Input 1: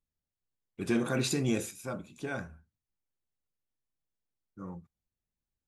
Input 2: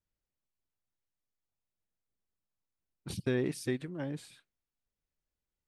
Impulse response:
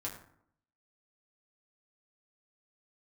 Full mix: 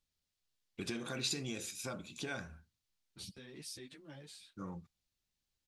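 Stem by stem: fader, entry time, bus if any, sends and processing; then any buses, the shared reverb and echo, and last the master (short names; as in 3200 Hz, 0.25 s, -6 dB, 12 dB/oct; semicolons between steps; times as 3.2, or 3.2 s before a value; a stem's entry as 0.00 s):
-0.5 dB, 0.00 s, no send, compressor 6:1, threshold -39 dBFS, peak gain reduction 14 dB
-9.5 dB, 0.10 s, no send, high shelf 5600 Hz +7.5 dB; limiter -30.5 dBFS, peak gain reduction 12 dB; ensemble effect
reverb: off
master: bell 4200 Hz +11.5 dB 1.9 oct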